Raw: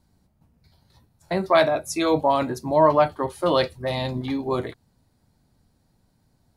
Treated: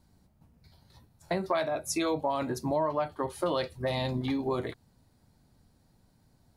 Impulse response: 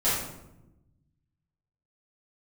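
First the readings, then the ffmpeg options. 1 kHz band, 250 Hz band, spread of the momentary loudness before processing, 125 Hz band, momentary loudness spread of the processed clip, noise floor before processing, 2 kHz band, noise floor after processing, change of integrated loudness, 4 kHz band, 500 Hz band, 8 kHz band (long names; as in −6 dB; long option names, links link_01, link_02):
−10.0 dB, −6.5 dB, 10 LU, −5.5 dB, 5 LU, −66 dBFS, −9.0 dB, −66 dBFS, −9.0 dB, −7.5 dB, −9.5 dB, −2.0 dB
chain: -af "acompressor=threshold=-27dB:ratio=5"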